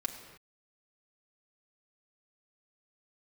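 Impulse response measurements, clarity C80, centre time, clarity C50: 8.5 dB, 25 ms, 8.0 dB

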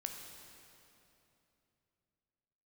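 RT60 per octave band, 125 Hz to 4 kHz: 3.9, 3.5, 3.1, 2.8, 2.6, 2.4 seconds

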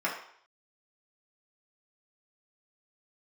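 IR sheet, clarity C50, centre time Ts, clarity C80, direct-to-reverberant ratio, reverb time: 5.5 dB, 31 ms, 9.0 dB, −5.5 dB, 0.60 s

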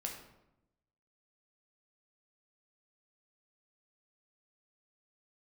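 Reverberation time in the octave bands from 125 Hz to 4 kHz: 1.1, 1.1, 0.95, 0.85, 0.70, 0.55 seconds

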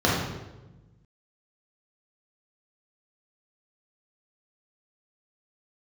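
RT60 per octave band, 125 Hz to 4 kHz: 1.8, 1.5, 1.2, 0.95, 0.85, 0.80 seconds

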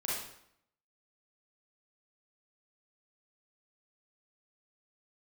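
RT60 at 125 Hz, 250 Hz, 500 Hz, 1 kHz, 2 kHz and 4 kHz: 0.75, 0.75, 0.70, 0.70, 0.65, 0.60 seconds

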